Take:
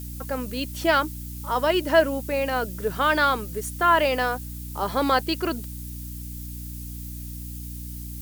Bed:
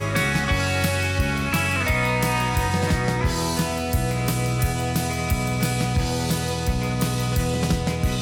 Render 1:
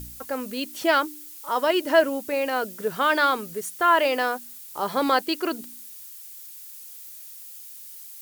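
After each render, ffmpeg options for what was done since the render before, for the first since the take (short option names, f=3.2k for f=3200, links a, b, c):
-af "bandreject=f=60:t=h:w=4,bandreject=f=120:t=h:w=4,bandreject=f=180:t=h:w=4,bandreject=f=240:t=h:w=4,bandreject=f=300:t=h:w=4"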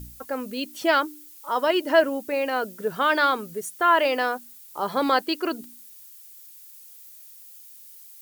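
-af "afftdn=nr=6:nf=-42"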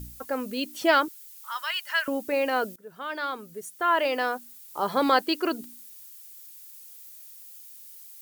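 -filter_complex "[0:a]asettb=1/sr,asplit=3[a][b][c];[a]atrim=end=1.084[d];[b]atrim=start=1.08:end=2.08,asetpts=PTS-STARTPTS,afade=t=in:d=0.004:c=qsin,afade=t=out:st=0.996:d=0.004:c=qsin,highpass=f=1.3k:w=0.5412,highpass=f=1.3k:w=1.3066[e];[c]atrim=start=2.076[f];[d][e]acrossfade=d=0.004:c1=hsin:c2=qsin[g];[g][f]acrossfade=d=0.004:c1=qsin:c2=hsin,asplit=2[h][i];[h]atrim=end=2.76,asetpts=PTS-STARTPTS,afade=t=out:st=2.756:d=0.004:c=hsin:silence=0.0841395[j];[i]atrim=start=2.76,asetpts=PTS-STARTPTS,afade=t=in:d=2.03:silence=0.0841395[k];[j][k]concat=n=2:v=0:a=1"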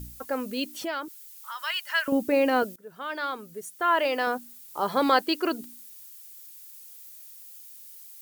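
-filter_complex "[0:a]asettb=1/sr,asplit=3[a][b][c];[a]atrim=end=0.804[d];[b]atrim=start=0.8:end=1.61,asetpts=PTS-STARTPTS,afade=t=in:d=0.004:c=qsin,afade=t=out:st=0.806:d=0.004:c=qsin,acompressor=threshold=-33dB:ratio=2.5:attack=3.2:release=140:knee=1:detection=peak[e];[c]atrim=start=1.606[f];[d][e]acrossfade=d=0.004:c1=hsin:c2=qsin[g];[g][f]acrossfade=d=0.004:c1=qsin:c2=hsin,asettb=1/sr,asplit=3[h][i][j];[h]atrim=end=2.124[k];[i]atrim=start=2.12:end=2.63,asetpts=PTS-STARTPTS,afade=t=in:d=0.004:c=qsin,afade=t=out:st=0.506:d=0.004:c=qsin,equalizer=f=170:w=0.58:g=10.5[l];[j]atrim=start=2.626[m];[k][l]acrossfade=d=0.004:c1=hsin:c2=qsin[n];[n][m]acrossfade=d=0.004:c1=qsin:c2=hsin,asettb=1/sr,asplit=3[o][p][q];[o]atrim=end=4.274[r];[p]atrim=start=4.27:end=4.74,asetpts=PTS-STARTPTS,afade=t=in:d=0.004:c=qsin,afade=t=out:st=0.466:d=0.004:c=qsin,equalizer=f=150:t=o:w=2.6:g=7.5[s];[q]atrim=start=4.736[t];[r][s]acrossfade=d=0.004:c1=hsin:c2=qsin[u];[u][t]acrossfade=d=0.004:c1=qsin:c2=hsin"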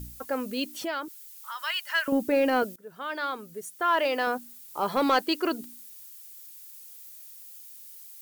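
-af "asoftclip=type=tanh:threshold=-13dB"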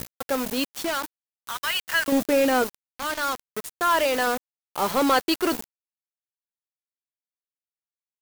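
-filter_complex "[0:a]asplit=2[a][b];[b]asoftclip=type=tanh:threshold=-22.5dB,volume=-4dB[c];[a][c]amix=inputs=2:normalize=0,acrusher=bits=4:mix=0:aa=0.000001"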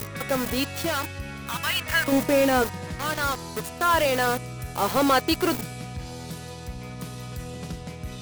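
-filter_complex "[1:a]volume=-13dB[a];[0:a][a]amix=inputs=2:normalize=0"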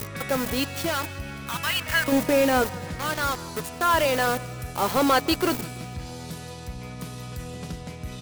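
-af "aecho=1:1:165|330|495|660:0.0891|0.0463|0.0241|0.0125"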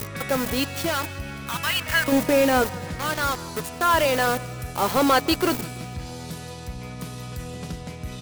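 -af "volume=1.5dB"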